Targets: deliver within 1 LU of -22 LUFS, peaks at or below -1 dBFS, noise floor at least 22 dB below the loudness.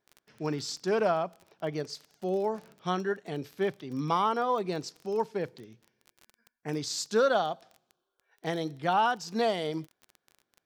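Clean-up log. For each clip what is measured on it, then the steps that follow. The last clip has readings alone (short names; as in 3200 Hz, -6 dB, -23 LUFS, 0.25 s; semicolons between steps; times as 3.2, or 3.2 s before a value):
ticks 24/s; loudness -31.0 LUFS; peak -13.5 dBFS; loudness target -22.0 LUFS
-> de-click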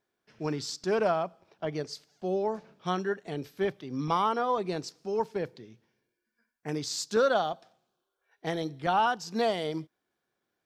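ticks 0/s; loudness -31.0 LUFS; peak -13.5 dBFS; loudness target -22.0 LUFS
-> gain +9 dB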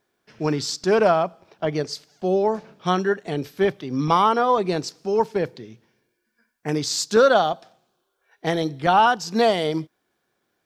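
loudness -22.0 LUFS; peak -4.5 dBFS; noise floor -74 dBFS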